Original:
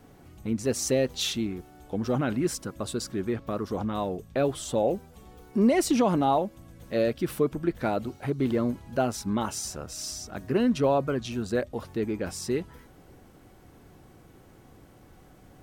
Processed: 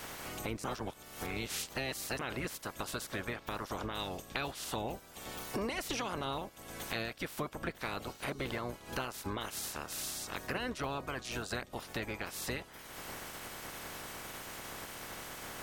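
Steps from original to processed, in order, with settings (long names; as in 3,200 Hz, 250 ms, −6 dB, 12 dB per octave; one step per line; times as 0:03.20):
ceiling on every frequency bin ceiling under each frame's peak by 24 dB
0:00.64–0:02.19: reverse
0:03.99–0:04.65: dynamic equaliser 4,200 Hz, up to +5 dB, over −46 dBFS, Q 0.72
downward compressor 4 to 1, threshold −48 dBFS, peak gain reduction 24.5 dB
level +8.5 dB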